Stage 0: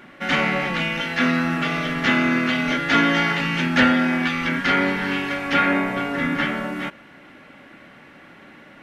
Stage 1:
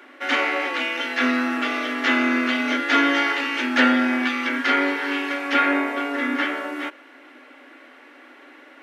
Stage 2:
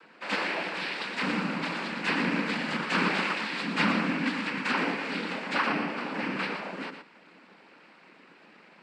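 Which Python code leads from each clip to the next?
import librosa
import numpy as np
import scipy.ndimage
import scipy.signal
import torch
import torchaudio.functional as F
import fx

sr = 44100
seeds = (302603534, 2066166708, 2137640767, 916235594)

y1 = scipy.signal.sosfilt(scipy.signal.cheby1(8, 1.0, 250.0, 'highpass', fs=sr, output='sos'), x)
y2 = fx.noise_vocoder(y1, sr, seeds[0], bands=8)
y2 = y2 + 10.0 ** (-8.5 / 20.0) * np.pad(y2, (int(117 * sr / 1000.0), 0))[:len(y2)]
y2 = F.gain(torch.from_numpy(y2), -8.0).numpy()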